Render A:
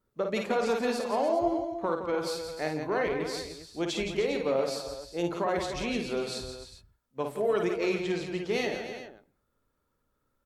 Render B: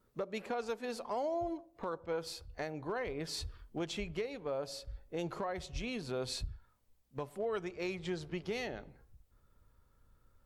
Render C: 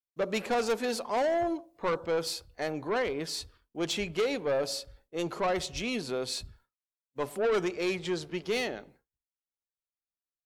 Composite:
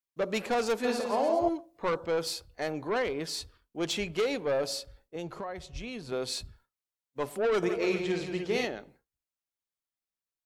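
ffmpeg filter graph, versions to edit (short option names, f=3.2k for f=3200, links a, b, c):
-filter_complex "[0:a]asplit=2[a][b];[2:a]asplit=4[c][d][e][f];[c]atrim=end=0.842[g];[a]atrim=start=0.838:end=1.492[h];[d]atrim=start=1.488:end=5.162[i];[1:a]atrim=start=5.158:end=6.122[j];[e]atrim=start=6.118:end=7.632[k];[b]atrim=start=7.628:end=8.652[l];[f]atrim=start=8.648[m];[g][h]acrossfade=d=0.004:c1=hsin:c2=hsin[n];[n][i]acrossfade=d=0.004:c1=hsin:c2=hsin[o];[o][j]acrossfade=d=0.004:c1=hsin:c2=hsin[p];[p][k]acrossfade=d=0.004:c1=hsin:c2=hsin[q];[q][l]acrossfade=d=0.004:c1=hsin:c2=hsin[r];[r][m]acrossfade=d=0.004:c1=hsin:c2=hsin"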